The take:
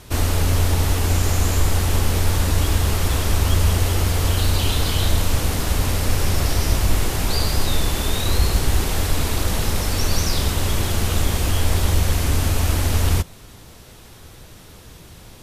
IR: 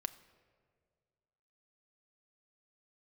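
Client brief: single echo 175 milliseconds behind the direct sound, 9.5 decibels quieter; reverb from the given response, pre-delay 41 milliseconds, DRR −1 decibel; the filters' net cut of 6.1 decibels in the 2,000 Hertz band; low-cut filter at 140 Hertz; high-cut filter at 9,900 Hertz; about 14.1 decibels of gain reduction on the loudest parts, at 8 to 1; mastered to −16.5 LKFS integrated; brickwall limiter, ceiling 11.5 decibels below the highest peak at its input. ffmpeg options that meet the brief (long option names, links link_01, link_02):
-filter_complex "[0:a]highpass=140,lowpass=9900,equalizer=frequency=2000:width_type=o:gain=-8,acompressor=threshold=-37dB:ratio=8,alimiter=level_in=12dB:limit=-24dB:level=0:latency=1,volume=-12dB,aecho=1:1:175:0.335,asplit=2[link_01][link_02];[1:a]atrim=start_sample=2205,adelay=41[link_03];[link_02][link_03]afir=irnorm=-1:irlink=0,volume=2dB[link_04];[link_01][link_04]amix=inputs=2:normalize=0,volume=24.5dB"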